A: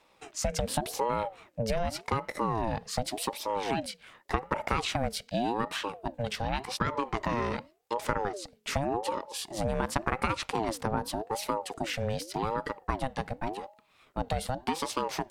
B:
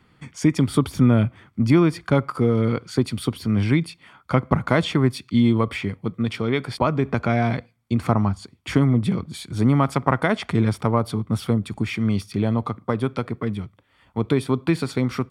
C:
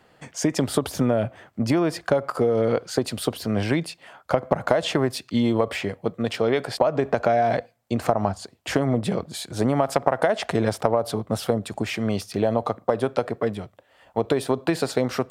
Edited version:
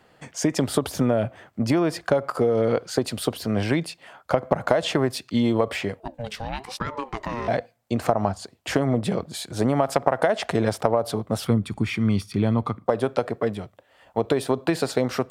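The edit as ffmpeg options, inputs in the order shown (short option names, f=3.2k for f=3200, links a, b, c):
-filter_complex "[2:a]asplit=3[a][b][c];[a]atrim=end=6.002[d];[0:a]atrim=start=5.998:end=7.482[e];[b]atrim=start=7.478:end=11.452[f];[1:a]atrim=start=11.448:end=12.862[g];[c]atrim=start=12.858[h];[d][e]acrossfade=d=0.004:c1=hsin:c2=hsin[i];[i][f]acrossfade=d=0.004:c1=hsin:c2=hsin[j];[j][g]acrossfade=d=0.004:c1=hsin:c2=hsin[k];[k][h]acrossfade=d=0.004:c1=hsin:c2=hsin"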